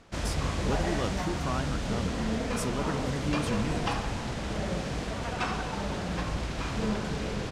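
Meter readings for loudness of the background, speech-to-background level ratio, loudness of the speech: -32.0 LUFS, -3.5 dB, -35.5 LUFS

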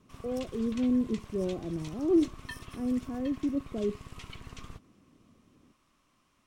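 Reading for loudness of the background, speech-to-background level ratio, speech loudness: -47.0 LUFS, 15.5 dB, -31.5 LUFS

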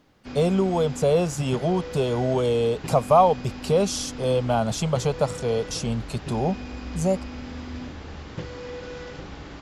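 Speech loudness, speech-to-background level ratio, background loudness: -24.0 LUFS, 13.0 dB, -37.0 LUFS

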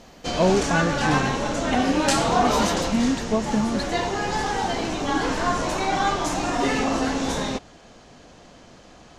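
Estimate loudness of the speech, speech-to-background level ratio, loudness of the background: -26.0 LUFS, -2.0 dB, -24.0 LUFS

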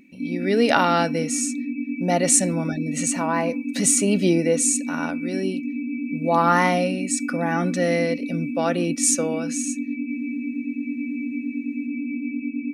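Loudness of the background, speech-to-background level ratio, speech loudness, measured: -28.5 LUFS, 6.0 dB, -22.5 LUFS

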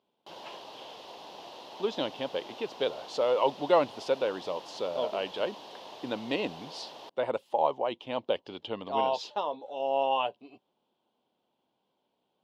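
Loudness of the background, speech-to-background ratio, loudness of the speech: -46.0 LUFS, 14.5 dB, -31.5 LUFS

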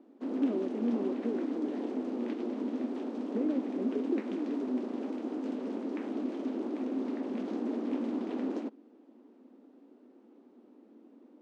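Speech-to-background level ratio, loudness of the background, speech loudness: -0.5 dB, -36.0 LUFS, -36.5 LUFS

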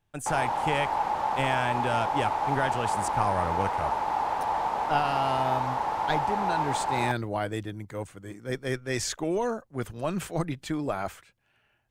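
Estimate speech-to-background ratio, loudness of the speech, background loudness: -3.0 dB, -31.5 LUFS, -28.5 LUFS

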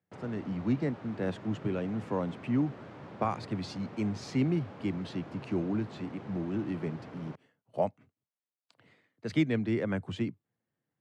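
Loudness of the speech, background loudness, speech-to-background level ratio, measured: -34.0 LUFS, -47.0 LUFS, 13.0 dB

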